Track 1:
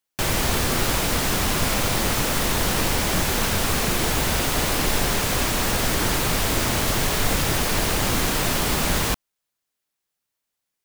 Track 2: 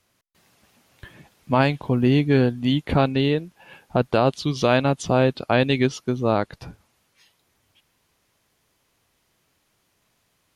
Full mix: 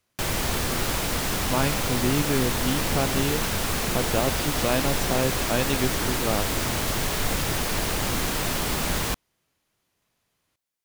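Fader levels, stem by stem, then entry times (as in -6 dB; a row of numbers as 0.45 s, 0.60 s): -4.0 dB, -7.0 dB; 0.00 s, 0.00 s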